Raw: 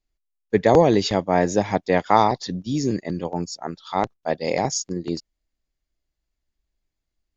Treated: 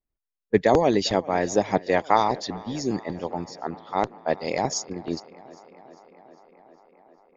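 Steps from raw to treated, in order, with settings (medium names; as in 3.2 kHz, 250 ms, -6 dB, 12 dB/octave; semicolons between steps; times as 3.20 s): level-controlled noise filter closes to 1.4 kHz, open at -16.5 dBFS; harmonic-percussive split harmonic -10 dB; on a send: tape echo 402 ms, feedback 80%, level -20 dB, low-pass 4.4 kHz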